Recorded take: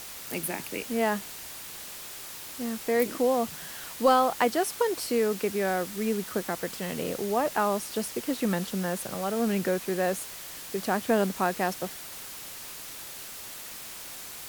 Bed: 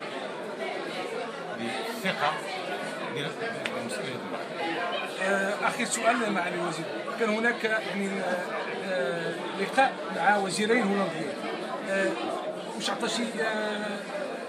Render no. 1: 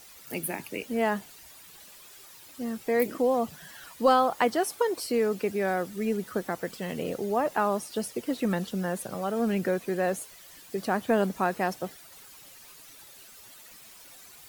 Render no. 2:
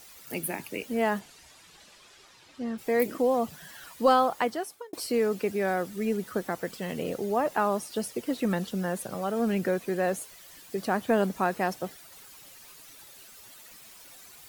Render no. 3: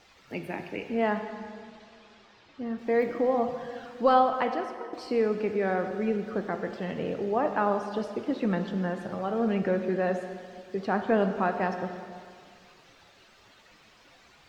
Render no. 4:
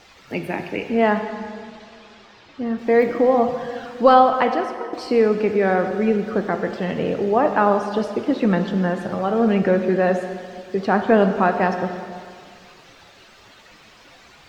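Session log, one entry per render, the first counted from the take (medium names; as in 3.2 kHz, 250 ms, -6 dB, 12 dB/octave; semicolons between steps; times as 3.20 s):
noise reduction 12 dB, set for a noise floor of -42 dBFS
1.19–2.77 s: low-pass 9 kHz -> 4.2 kHz; 4.23–4.93 s: fade out
distance through air 190 m; plate-style reverb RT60 2.2 s, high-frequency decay 0.75×, DRR 6 dB
trim +9 dB; peak limiter -1 dBFS, peak gain reduction 1 dB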